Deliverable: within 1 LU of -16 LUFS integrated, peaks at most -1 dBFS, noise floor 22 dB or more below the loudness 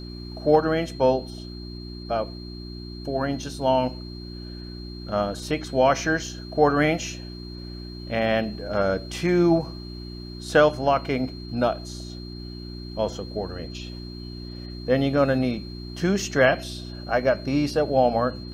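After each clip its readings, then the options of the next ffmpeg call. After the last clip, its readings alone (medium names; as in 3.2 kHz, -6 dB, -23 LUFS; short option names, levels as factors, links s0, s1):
hum 60 Hz; highest harmonic 360 Hz; hum level -34 dBFS; steady tone 4.2 kHz; tone level -43 dBFS; loudness -24.0 LUFS; peak level -5.5 dBFS; loudness target -16.0 LUFS
-> -af "bandreject=f=60:t=h:w=4,bandreject=f=120:t=h:w=4,bandreject=f=180:t=h:w=4,bandreject=f=240:t=h:w=4,bandreject=f=300:t=h:w=4,bandreject=f=360:t=h:w=4"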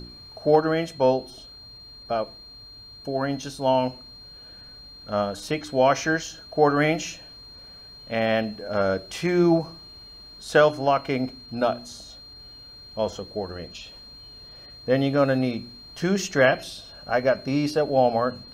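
hum not found; steady tone 4.2 kHz; tone level -43 dBFS
-> -af "bandreject=f=4200:w=30"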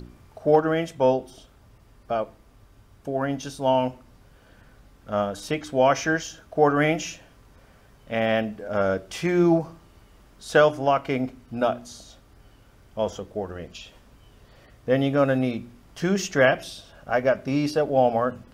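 steady tone not found; loudness -24.0 LUFS; peak level -5.5 dBFS; loudness target -16.0 LUFS
-> -af "volume=2.51,alimiter=limit=0.891:level=0:latency=1"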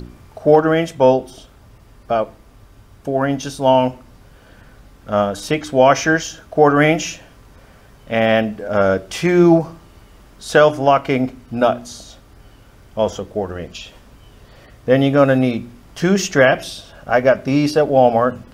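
loudness -16.5 LUFS; peak level -1.0 dBFS; noise floor -47 dBFS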